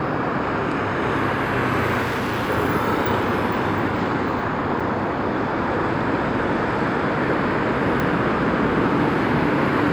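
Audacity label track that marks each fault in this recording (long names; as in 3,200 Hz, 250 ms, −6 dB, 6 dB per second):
2.020000	2.490000	clipping −20 dBFS
4.800000	4.810000	drop-out 5.4 ms
8.000000	8.000000	click −10 dBFS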